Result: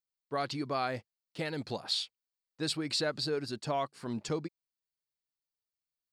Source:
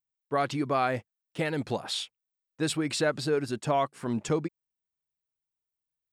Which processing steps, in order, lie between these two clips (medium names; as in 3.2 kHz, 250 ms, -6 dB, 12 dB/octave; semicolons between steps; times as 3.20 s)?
peaking EQ 4.5 kHz +12 dB 0.45 oct; trim -6.5 dB